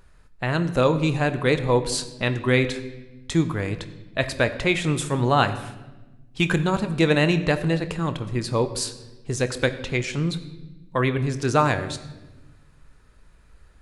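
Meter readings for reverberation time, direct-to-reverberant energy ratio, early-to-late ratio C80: 1.1 s, 10.0 dB, 14.5 dB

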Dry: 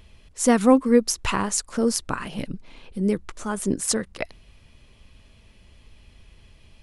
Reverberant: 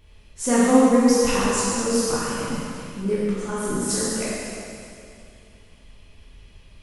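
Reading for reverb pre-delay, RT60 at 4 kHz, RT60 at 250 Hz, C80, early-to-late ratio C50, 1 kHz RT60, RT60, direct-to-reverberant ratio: 7 ms, 2.4 s, 2.6 s, −2.0 dB, −4.0 dB, 2.6 s, 2.6 s, −9.5 dB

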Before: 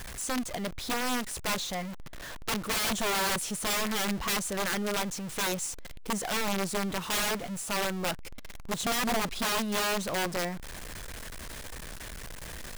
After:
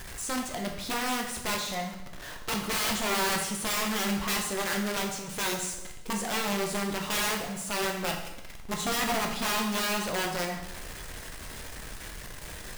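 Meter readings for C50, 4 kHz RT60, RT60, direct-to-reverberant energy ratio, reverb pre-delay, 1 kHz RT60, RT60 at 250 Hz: 5.5 dB, 0.85 s, 0.90 s, 1.0 dB, 8 ms, 0.90 s, 0.75 s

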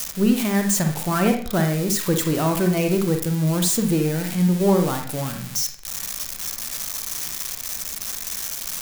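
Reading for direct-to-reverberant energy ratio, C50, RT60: 4.0 dB, 6.5 dB, 0.50 s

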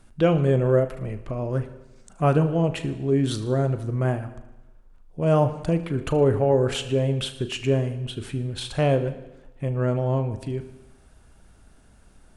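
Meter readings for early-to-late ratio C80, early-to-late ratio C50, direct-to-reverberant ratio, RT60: 14.0 dB, 12.5 dB, 9.0 dB, 1.0 s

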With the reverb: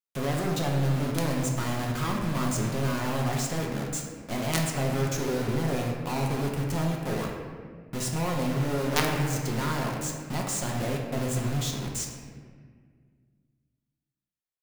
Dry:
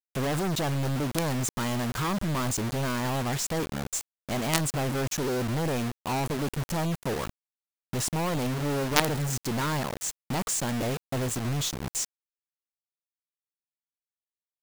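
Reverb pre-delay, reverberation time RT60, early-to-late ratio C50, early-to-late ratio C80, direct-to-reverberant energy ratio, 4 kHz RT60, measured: 4 ms, 1.8 s, 2.5 dB, 4.5 dB, −1.0 dB, 1.1 s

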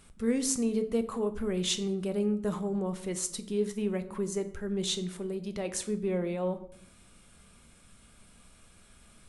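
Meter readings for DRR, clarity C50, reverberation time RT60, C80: 8.5 dB, 14.0 dB, 0.65 s, 16.5 dB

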